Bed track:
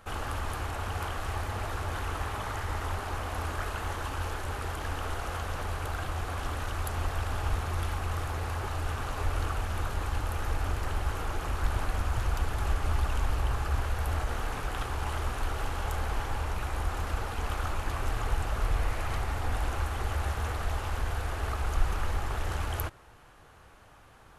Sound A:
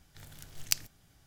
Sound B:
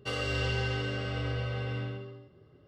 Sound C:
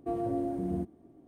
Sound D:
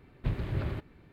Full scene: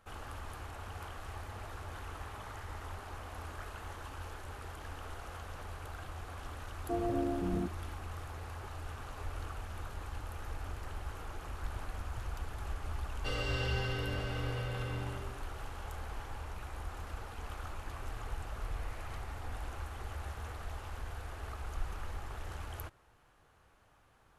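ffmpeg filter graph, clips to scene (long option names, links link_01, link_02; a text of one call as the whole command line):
ffmpeg -i bed.wav -i cue0.wav -i cue1.wav -i cue2.wav -filter_complex "[0:a]volume=-11dB[link_01];[3:a]atrim=end=1.27,asetpts=PTS-STARTPTS,volume=-2dB,afade=type=in:duration=0.004:curve=hsin,afade=type=out:start_time=1.266:duration=0.004:curve=hsin,adelay=6830[link_02];[2:a]atrim=end=2.67,asetpts=PTS-STARTPTS,volume=-4.5dB,afade=type=in:duration=0.004:curve=hsin,afade=type=out:start_time=2.666:duration=0.004:curve=hsin,adelay=13190[link_03];[link_01][link_02][link_03]amix=inputs=3:normalize=0" out.wav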